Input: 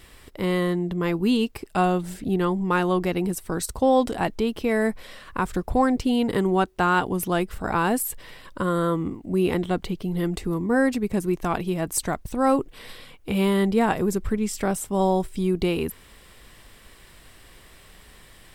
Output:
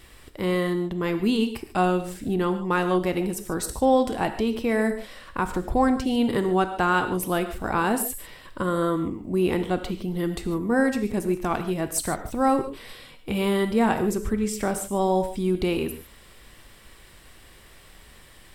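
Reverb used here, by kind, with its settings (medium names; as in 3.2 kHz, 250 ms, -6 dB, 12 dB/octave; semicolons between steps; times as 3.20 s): gated-style reverb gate 170 ms flat, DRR 8 dB; trim -1 dB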